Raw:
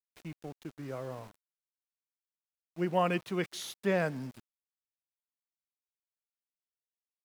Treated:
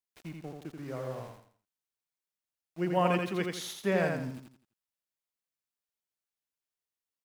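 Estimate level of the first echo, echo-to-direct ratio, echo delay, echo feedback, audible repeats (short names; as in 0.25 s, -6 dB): -4.0 dB, -3.5 dB, 84 ms, 34%, 4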